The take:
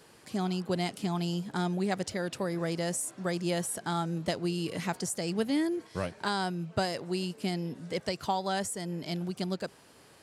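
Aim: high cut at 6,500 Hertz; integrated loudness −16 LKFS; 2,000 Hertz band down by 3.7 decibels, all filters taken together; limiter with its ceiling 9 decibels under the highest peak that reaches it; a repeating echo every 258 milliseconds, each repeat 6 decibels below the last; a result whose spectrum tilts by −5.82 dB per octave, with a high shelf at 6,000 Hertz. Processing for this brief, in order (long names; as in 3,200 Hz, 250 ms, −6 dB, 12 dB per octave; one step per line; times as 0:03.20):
low-pass filter 6,500 Hz
parametric band 2,000 Hz −4 dB
high-shelf EQ 6,000 Hz −8 dB
brickwall limiter −26 dBFS
repeating echo 258 ms, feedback 50%, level −6 dB
level +18.5 dB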